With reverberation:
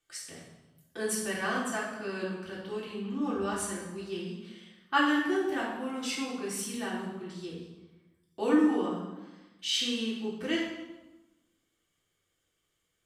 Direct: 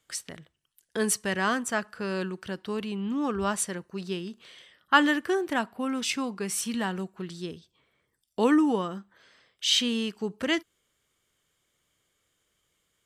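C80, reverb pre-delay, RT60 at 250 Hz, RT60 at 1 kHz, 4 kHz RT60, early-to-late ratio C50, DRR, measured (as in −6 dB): 5.0 dB, 3 ms, 1.3 s, 1.1 s, 0.85 s, 2.0 dB, −7.0 dB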